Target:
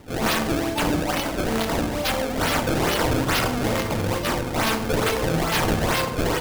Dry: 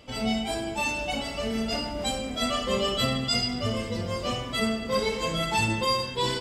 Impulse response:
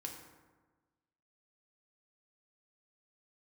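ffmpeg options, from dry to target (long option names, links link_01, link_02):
-filter_complex "[0:a]acrusher=samples=26:mix=1:aa=0.000001:lfo=1:lforange=41.6:lforate=2.3,aeval=exprs='(mod(12.6*val(0)+1,2)-1)/12.6':channel_layout=same,asplit=2[link_01][link_02];[1:a]atrim=start_sample=2205[link_03];[link_02][link_03]afir=irnorm=-1:irlink=0,volume=3.5dB[link_04];[link_01][link_04]amix=inputs=2:normalize=0"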